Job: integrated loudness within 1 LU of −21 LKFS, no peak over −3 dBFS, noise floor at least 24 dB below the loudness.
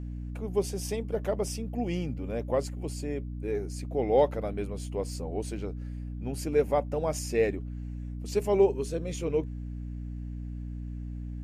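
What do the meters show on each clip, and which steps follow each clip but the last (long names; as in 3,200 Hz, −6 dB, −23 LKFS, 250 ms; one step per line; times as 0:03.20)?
mains hum 60 Hz; hum harmonics up to 300 Hz; level of the hum −34 dBFS; integrated loudness −31.5 LKFS; sample peak −11.5 dBFS; target loudness −21.0 LKFS
→ hum removal 60 Hz, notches 5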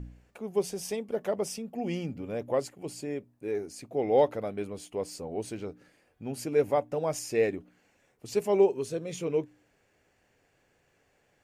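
mains hum none found; integrated loudness −31.0 LKFS; sample peak −12.0 dBFS; target loudness −21.0 LKFS
→ level +10 dB
brickwall limiter −3 dBFS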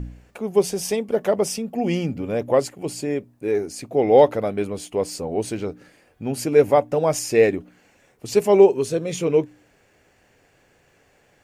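integrated loudness −21.0 LKFS; sample peak −3.0 dBFS; background noise floor −60 dBFS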